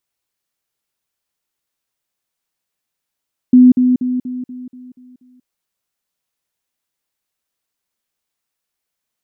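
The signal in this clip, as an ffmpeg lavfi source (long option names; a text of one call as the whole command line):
ffmpeg -f lavfi -i "aevalsrc='pow(10,(-3-6*floor(t/0.24))/20)*sin(2*PI*251*t)*clip(min(mod(t,0.24),0.19-mod(t,0.24))/0.005,0,1)':duration=1.92:sample_rate=44100" out.wav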